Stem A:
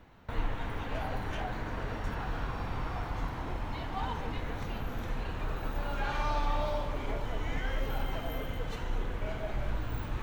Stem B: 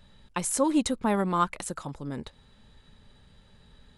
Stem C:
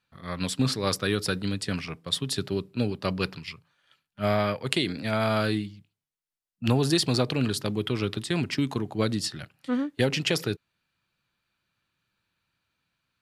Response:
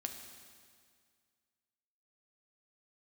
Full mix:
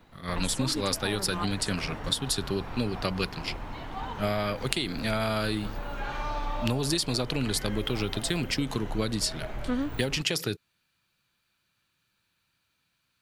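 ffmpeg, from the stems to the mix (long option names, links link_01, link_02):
-filter_complex "[0:a]equalizer=frequency=68:width=1.2:gain=-6,volume=-0.5dB[link_01];[1:a]volume=-8.5dB[link_02];[2:a]highshelf=frequency=3900:gain=8,volume=1dB[link_03];[link_01][link_02][link_03]amix=inputs=3:normalize=0,acompressor=threshold=-24dB:ratio=6"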